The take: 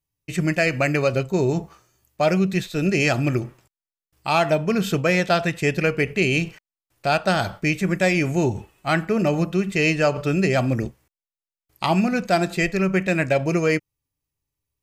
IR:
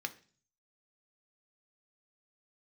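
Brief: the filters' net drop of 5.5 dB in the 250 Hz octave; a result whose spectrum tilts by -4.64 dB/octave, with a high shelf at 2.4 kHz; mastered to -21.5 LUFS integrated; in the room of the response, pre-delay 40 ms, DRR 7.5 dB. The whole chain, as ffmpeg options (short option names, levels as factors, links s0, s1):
-filter_complex "[0:a]equalizer=f=250:t=o:g=-9,highshelf=f=2400:g=-4.5,asplit=2[s0][s1];[1:a]atrim=start_sample=2205,adelay=40[s2];[s1][s2]afir=irnorm=-1:irlink=0,volume=0.355[s3];[s0][s3]amix=inputs=2:normalize=0,volume=1.33"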